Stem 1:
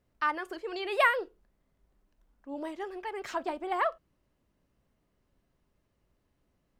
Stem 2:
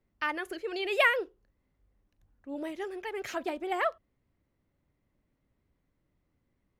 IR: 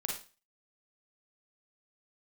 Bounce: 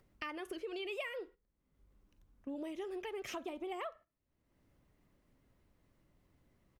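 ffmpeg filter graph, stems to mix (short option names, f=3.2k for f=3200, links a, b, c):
-filter_complex "[0:a]acompressor=mode=upward:threshold=-43dB:ratio=2.5,volume=-7dB,asplit=2[a][b];[1:a]acompressor=mode=upward:threshold=-31dB:ratio=2.5,adelay=0.3,volume=-5dB,asplit=2[c][d];[d]volume=-21.5dB[e];[b]apad=whole_len=299494[f];[c][f]sidechaingate=range=-7dB:threshold=-53dB:ratio=16:detection=peak[g];[2:a]atrim=start_sample=2205[h];[e][h]afir=irnorm=-1:irlink=0[i];[a][g][i]amix=inputs=3:normalize=0,agate=range=-11dB:threshold=-49dB:ratio=16:detection=peak,acompressor=threshold=-39dB:ratio=6"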